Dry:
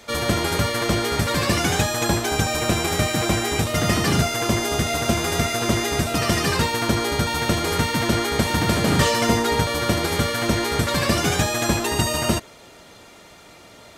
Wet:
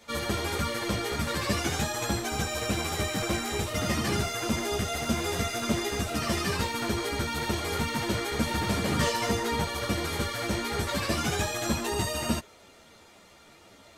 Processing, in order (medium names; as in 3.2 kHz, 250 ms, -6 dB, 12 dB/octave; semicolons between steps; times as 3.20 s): three-phase chorus; trim -5 dB